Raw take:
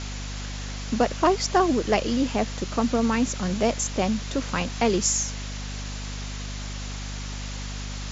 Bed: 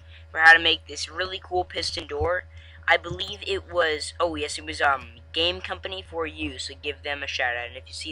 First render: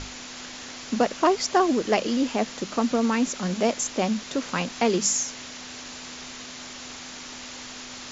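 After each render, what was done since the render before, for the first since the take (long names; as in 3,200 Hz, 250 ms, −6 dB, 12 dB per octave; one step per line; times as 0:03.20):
mains-hum notches 50/100/150/200 Hz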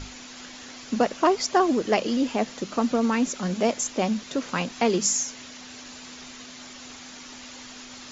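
broadband denoise 6 dB, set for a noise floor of −40 dBFS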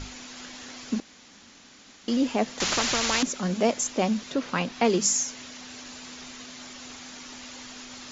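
0:01.00–0:02.08: fill with room tone
0:02.60–0:03.23: every bin compressed towards the loudest bin 4 to 1
0:04.31–0:04.84: low-pass filter 5,400 Hz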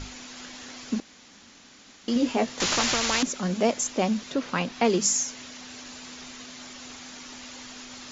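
0:02.14–0:02.95: double-tracking delay 17 ms −5.5 dB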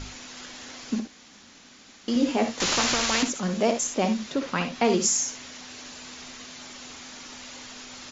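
ambience of single reflections 58 ms −10 dB, 71 ms −12 dB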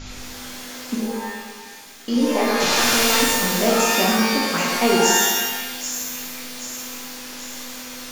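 echo with a time of its own for lows and highs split 1,900 Hz, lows 104 ms, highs 782 ms, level −8 dB
reverb with rising layers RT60 1 s, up +12 semitones, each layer −2 dB, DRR −1.5 dB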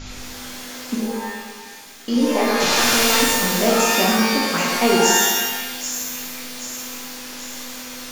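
level +1 dB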